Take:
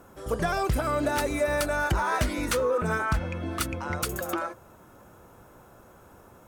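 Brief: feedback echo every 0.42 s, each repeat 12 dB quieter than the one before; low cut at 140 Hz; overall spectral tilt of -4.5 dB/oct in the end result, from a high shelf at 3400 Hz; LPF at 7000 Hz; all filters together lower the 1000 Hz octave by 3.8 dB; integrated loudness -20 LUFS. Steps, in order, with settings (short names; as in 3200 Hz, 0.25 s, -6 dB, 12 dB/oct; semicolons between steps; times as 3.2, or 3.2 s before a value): HPF 140 Hz; LPF 7000 Hz; bell 1000 Hz -4 dB; high shelf 3400 Hz -8.5 dB; feedback echo 0.42 s, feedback 25%, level -12 dB; gain +10.5 dB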